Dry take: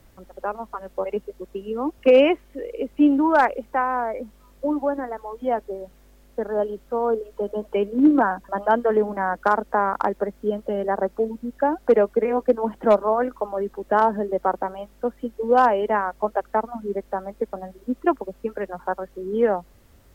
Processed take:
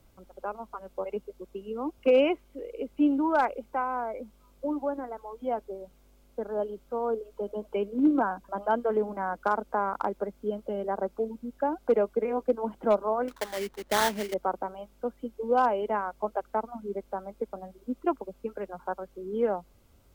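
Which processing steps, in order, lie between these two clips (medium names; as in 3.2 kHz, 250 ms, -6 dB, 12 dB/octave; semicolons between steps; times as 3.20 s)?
band-stop 1.8 kHz, Q 5.1; 13.28–14.34 s: sample-rate reducer 2.6 kHz, jitter 20%; trim -7 dB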